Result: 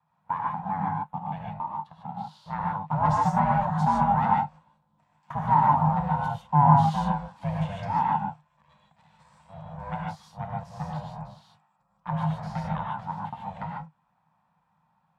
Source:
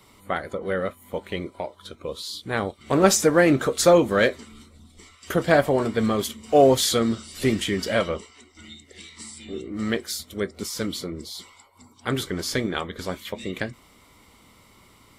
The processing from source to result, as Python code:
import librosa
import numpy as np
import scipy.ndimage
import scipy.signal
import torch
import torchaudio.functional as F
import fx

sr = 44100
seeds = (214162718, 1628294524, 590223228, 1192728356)

y = x * np.sin(2.0 * np.pi * 290.0 * np.arange(len(x)) / sr)
y = fx.leveller(y, sr, passes=2)
y = fx.double_bandpass(y, sr, hz=380.0, octaves=2.6)
y = fx.rev_gated(y, sr, seeds[0], gate_ms=170, shape='rising', drr_db=-2.0)